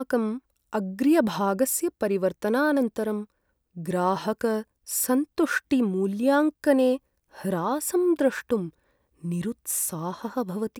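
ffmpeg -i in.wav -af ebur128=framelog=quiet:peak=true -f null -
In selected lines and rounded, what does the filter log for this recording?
Integrated loudness:
  I:         -25.5 LUFS
  Threshold: -35.9 LUFS
Loudness range:
  LRA:         3.0 LU
  Threshold: -45.7 LUFS
  LRA low:   -27.5 LUFS
  LRA high:  -24.4 LUFS
True peak:
  Peak:       -8.6 dBFS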